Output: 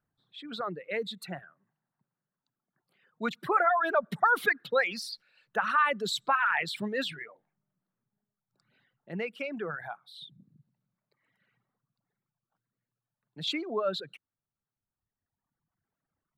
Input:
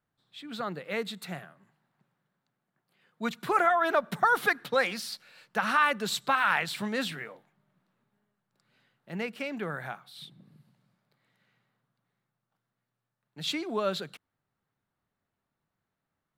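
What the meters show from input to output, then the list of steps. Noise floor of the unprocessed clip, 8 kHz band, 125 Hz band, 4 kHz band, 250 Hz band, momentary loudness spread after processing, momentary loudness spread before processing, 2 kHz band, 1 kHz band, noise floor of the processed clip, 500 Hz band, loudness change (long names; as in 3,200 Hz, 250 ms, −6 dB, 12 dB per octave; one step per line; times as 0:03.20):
−85 dBFS, −4.5 dB, −2.5 dB, −0.5 dB, −2.5 dB, 19 LU, 18 LU, −0.5 dB, −0.5 dB, below −85 dBFS, −0.5 dB, −0.5 dB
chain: spectral envelope exaggerated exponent 1.5
reverb reduction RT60 1.6 s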